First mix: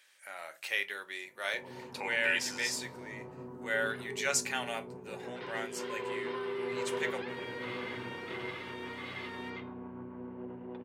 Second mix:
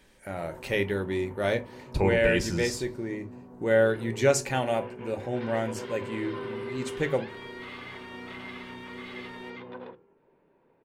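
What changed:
speech: remove high-pass 1.3 kHz 12 dB/octave; first sound: entry -1.25 s

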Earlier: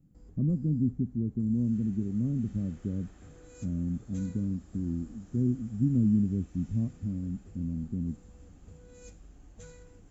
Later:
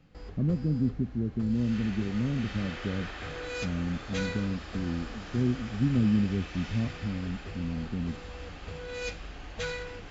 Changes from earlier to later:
background +9.0 dB; master: remove FFT filter 290 Hz 0 dB, 450 Hz -7 dB, 2.6 kHz -18 dB, 4.8 kHz -14 dB, 8.5 kHz +13 dB

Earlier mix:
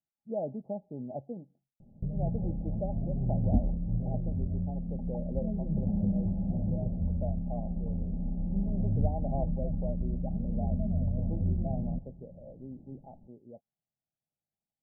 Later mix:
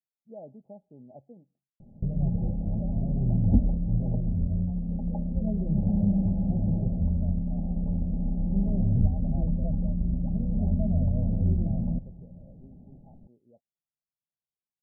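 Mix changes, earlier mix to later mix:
speech -10.0 dB; background +5.0 dB

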